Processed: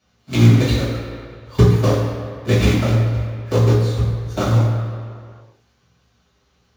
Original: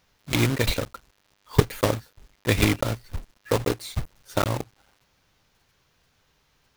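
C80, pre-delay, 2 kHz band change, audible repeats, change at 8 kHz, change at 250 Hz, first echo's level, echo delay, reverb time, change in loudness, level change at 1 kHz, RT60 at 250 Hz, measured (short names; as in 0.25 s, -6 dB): 3.5 dB, 3 ms, +1.0 dB, none, -0.5 dB, +8.5 dB, none, none, 2.1 s, +8.5 dB, +3.0 dB, 1.7 s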